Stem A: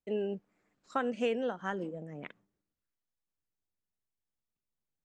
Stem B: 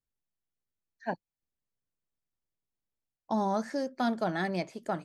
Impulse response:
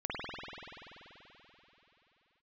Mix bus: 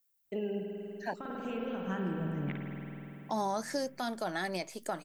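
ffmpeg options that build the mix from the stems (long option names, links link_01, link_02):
-filter_complex "[0:a]asubboost=boost=7:cutoff=240,acompressor=threshold=-35dB:ratio=6,adelay=250,volume=0dB,asplit=2[link_01][link_02];[link_02]volume=-5.5dB[link_03];[1:a]aemphasis=mode=production:type=bsi,volume=2.5dB,asplit=2[link_04][link_05];[link_05]apad=whole_len=233521[link_06];[link_01][link_06]sidechaincompress=threshold=-41dB:ratio=8:attack=16:release=773[link_07];[2:a]atrim=start_sample=2205[link_08];[link_03][link_08]afir=irnorm=-1:irlink=0[link_09];[link_07][link_04][link_09]amix=inputs=3:normalize=0,alimiter=limit=-23dB:level=0:latency=1:release=207"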